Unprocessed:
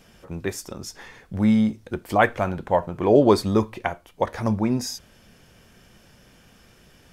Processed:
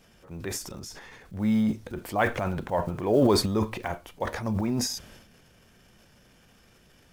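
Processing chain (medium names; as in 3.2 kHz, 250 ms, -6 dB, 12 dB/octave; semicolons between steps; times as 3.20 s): block-companded coder 7-bit; transient shaper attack -3 dB, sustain +10 dB; trim -5.5 dB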